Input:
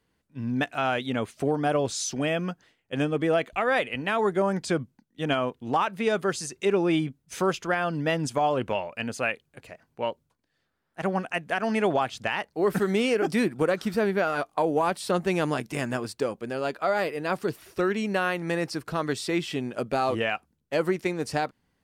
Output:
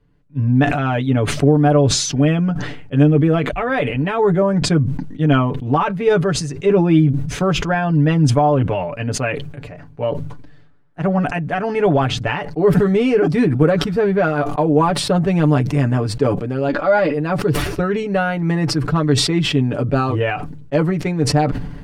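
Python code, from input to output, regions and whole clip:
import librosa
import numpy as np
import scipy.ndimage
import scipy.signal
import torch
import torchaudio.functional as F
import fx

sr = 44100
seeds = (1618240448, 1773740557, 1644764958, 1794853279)

y = fx.chain(x, sr, fx.lowpass(hz=7000.0, slope=24),
    fx.comb(ms=3.6, depth=0.57), at=(16.68, 17.14))
y = fx.riaa(y, sr, side='playback')
y = y + 0.8 * np.pad(y, (int(6.9 * sr / 1000.0), 0))[:len(y)]
y = fx.sustainer(y, sr, db_per_s=48.0)
y = y * 10.0 ** (2.5 / 20.0)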